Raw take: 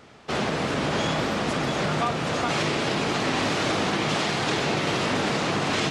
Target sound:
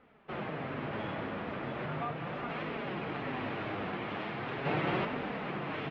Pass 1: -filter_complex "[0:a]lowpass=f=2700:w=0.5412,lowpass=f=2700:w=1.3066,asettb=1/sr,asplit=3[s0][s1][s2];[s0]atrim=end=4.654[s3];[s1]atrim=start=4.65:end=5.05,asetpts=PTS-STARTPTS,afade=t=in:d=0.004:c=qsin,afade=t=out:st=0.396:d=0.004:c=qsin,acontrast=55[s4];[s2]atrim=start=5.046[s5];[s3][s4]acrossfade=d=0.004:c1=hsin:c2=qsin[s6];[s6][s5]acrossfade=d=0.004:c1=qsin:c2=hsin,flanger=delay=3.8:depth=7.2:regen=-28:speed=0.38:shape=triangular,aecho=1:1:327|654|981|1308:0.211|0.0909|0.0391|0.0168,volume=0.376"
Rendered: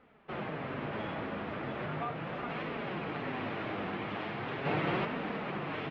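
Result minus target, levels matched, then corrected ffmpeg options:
echo 131 ms late
-filter_complex "[0:a]lowpass=f=2700:w=0.5412,lowpass=f=2700:w=1.3066,asettb=1/sr,asplit=3[s0][s1][s2];[s0]atrim=end=4.654[s3];[s1]atrim=start=4.65:end=5.05,asetpts=PTS-STARTPTS,afade=t=in:d=0.004:c=qsin,afade=t=out:st=0.396:d=0.004:c=qsin,acontrast=55[s4];[s2]atrim=start=5.046[s5];[s3][s4]acrossfade=d=0.004:c1=hsin:c2=qsin[s6];[s6][s5]acrossfade=d=0.004:c1=qsin:c2=hsin,flanger=delay=3.8:depth=7.2:regen=-28:speed=0.38:shape=triangular,aecho=1:1:196|392|588|784:0.211|0.0909|0.0391|0.0168,volume=0.376"

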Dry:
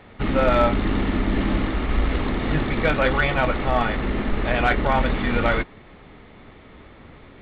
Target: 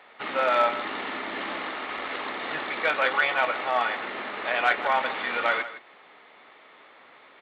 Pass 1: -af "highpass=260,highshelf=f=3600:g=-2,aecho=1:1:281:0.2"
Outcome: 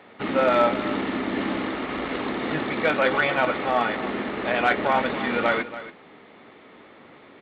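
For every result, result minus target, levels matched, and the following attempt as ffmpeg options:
echo 121 ms late; 250 Hz band +11.5 dB
-af "highpass=260,highshelf=f=3600:g=-2,aecho=1:1:160:0.2"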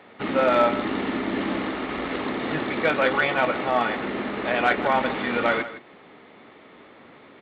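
250 Hz band +11.5 dB
-af "highpass=720,highshelf=f=3600:g=-2,aecho=1:1:160:0.2"

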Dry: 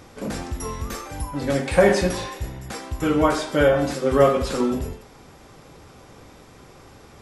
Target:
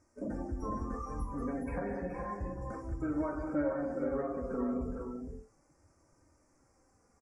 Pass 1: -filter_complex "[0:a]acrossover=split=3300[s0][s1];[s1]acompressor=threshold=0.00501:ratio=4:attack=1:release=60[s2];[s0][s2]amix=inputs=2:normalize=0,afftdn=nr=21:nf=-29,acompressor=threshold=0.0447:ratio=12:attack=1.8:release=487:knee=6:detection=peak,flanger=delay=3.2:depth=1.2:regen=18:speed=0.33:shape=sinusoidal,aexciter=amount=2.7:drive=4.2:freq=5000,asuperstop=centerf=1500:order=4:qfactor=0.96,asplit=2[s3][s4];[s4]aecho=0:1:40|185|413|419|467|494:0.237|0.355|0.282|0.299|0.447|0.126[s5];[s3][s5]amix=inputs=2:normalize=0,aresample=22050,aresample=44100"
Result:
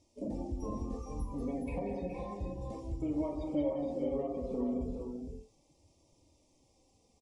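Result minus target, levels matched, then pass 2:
2 kHz band -10.0 dB
-filter_complex "[0:a]acrossover=split=3300[s0][s1];[s1]acompressor=threshold=0.00501:ratio=4:attack=1:release=60[s2];[s0][s2]amix=inputs=2:normalize=0,afftdn=nr=21:nf=-29,acompressor=threshold=0.0447:ratio=12:attack=1.8:release=487:knee=6:detection=peak,flanger=delay=3.2:depth=1.2:regen=18:speed=0.33:shape=sinusoidal,aexciter=amount=2.7:drive=4.2:freq=5000,asuperstop=centerf=3400:order=4:qfactor=0.96,asplit=2[s3][s4];[s4]aecho=0:1:40|185|413|419|467|494:0.237|0.355|0.282|0.299|0.447|0.126[s5];[s3][s5]amix=inputs=2:normalize=0,aresample=22050,aresample=44100"

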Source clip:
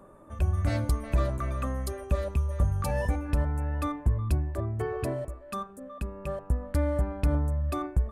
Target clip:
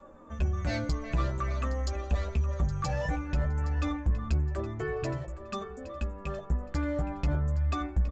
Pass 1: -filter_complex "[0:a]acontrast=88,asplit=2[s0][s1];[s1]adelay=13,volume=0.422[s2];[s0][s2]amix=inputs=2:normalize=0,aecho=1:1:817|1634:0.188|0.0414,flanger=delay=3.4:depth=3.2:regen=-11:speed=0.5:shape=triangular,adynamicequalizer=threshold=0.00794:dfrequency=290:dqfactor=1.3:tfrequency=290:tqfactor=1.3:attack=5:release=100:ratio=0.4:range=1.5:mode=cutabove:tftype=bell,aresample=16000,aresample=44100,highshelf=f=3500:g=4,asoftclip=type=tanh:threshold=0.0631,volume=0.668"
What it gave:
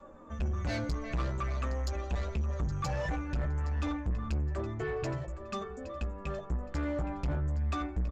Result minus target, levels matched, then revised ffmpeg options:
saturation: distortion +7 dB
-filter_complex "[0:a]acontrast=88,asplit=2[s0][s1];[s1]adelay=13,volume=0.422[s2];[s0][s2]amix=inputs=2:normalize=0,aecho=1:1:817|1634:0.188|0.0414,flanger=delay=3.4:depth=3.2:regen=-11:speed=0.5:shape=triangular,adynamicequalizer=threshold=0.00794:dfrequency=290:dqfactor=1.3:tfrequency=290:tqfactor=1.3:attack=5:release=100:ratio=0.4:range=1.5:mode=cutabove:tftype=bell,aresample=16000,aresample=44100,highshelf=f=3500:g=4,asoftclip=type=tanh:threshold=0.158,volume=0.668"

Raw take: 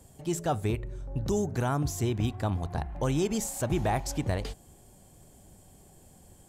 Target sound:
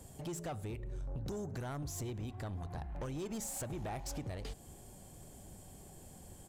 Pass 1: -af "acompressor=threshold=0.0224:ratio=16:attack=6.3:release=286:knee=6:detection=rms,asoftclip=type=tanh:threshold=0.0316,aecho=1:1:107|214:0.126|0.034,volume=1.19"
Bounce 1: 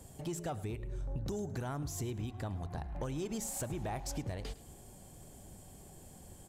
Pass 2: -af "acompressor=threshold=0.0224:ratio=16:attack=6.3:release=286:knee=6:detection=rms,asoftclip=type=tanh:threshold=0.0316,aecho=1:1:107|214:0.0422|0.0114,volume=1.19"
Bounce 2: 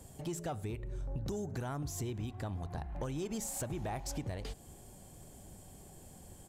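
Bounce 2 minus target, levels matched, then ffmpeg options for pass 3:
saturation: distortion -9 dB
-af "acompressor=threshold=0.0224:ratio=16:attack=6.3:release=286:knee=6:detection=rms,asoftclip=type=tanh:threshold=0.0141,aecho=1:1:107|214:0.0422|0.0114,volume=1.19"

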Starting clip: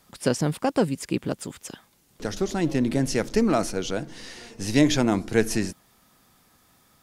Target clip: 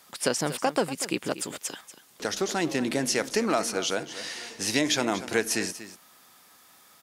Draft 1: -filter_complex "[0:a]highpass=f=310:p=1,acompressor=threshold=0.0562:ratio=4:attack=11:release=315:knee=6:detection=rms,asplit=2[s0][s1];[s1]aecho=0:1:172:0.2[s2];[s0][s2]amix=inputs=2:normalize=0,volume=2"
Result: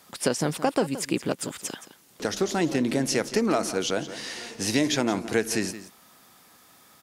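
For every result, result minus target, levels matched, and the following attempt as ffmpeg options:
echo 67 ms early; 250 Hz band +2.5 dB
-filter_complex "[0:a]highpass=f=310:p=1,acompressor=threshold=0.0562:ratio=4:attack=11:release=315:knee=6:detection=rms,asplit=2[s0][s1];[s1]aecho=0:1:239:0.2[s2];[s0][s2]amix=inputs=2:normalize=0,volume=2"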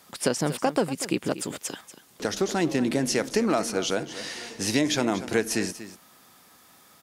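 250 Hz band +2.5 dB
-filter_complex "[0:a]highpass=f=740:p=1,acompressor=threshold=0.0562:ratio=4:attack=11:release=315:knee=6:detection=rms,asplit=2[s0][s1];[s1]aecho=0:1:239:0.2[s2];[s0][s2]amix=inputs=2:normalize=0,volume=2"

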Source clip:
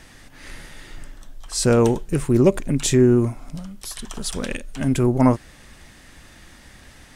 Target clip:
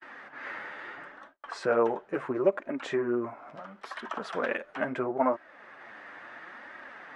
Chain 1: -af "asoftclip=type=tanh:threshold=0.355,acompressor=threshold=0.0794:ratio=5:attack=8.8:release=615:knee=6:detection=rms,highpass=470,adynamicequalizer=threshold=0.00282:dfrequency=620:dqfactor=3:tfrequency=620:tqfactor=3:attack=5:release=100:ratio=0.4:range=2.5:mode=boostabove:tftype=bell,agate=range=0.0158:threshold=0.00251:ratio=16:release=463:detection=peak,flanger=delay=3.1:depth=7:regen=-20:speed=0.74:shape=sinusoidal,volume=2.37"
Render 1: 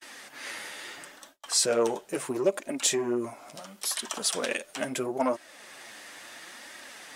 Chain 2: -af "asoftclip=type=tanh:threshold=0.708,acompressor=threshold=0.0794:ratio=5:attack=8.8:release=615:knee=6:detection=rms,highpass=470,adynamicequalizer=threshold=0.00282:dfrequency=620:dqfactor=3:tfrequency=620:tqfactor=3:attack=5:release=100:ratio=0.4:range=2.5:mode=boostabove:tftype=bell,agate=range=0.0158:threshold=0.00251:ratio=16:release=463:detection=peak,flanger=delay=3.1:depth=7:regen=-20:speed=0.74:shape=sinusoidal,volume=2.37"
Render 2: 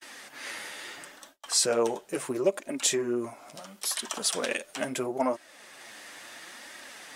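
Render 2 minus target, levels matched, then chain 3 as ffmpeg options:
2 kHz band -3.0 dB
-af "asoftclip=type=tanh:threshold=0.708,acompressor=threshold=0.0794:ratio=5:attack=8.8:release=615:knee=6:detection=rms,highpass=470,adynamicequalizer=threshold=0.00282:dfrequency=620:dqfactor=3:tfrequency=620:tqfactor=3:attack=5:release=100:ratio=0.4:range=2.5:mode=boostabove:tftype=bell,lowpass=f=1500:t=q:w=1.7,agate=range=0.0158:threshold=0.00251:ratio=16:release=463:detection=peak,flanger=delay=3.1:depth=7:regen=-20:speed=0.74:shape=sinusoidal,volume=2.37"

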